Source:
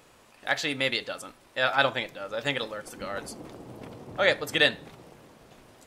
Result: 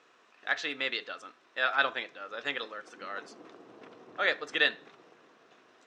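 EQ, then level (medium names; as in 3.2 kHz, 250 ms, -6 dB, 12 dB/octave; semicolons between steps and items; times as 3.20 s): cabinet simulation 460–5200 Hz, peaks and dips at 570 Hz -9 dB, 860 Hz -9 dB, 2.2 kHz -5 dB, 3.2 kHz -5 dB, 4.6 kHz -9 dB; 0.0 dB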